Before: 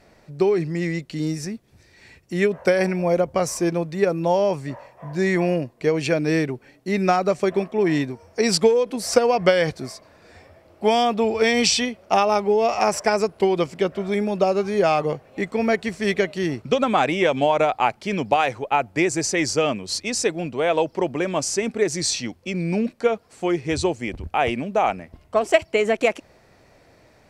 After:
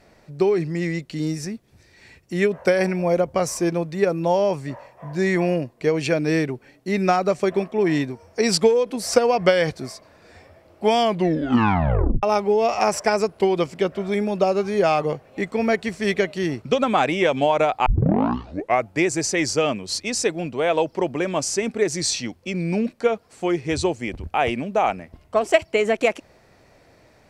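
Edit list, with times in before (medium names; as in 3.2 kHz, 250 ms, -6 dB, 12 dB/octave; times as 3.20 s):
10.99 s: tape stop 1.24 s
17.86 s: tape start 1.03 s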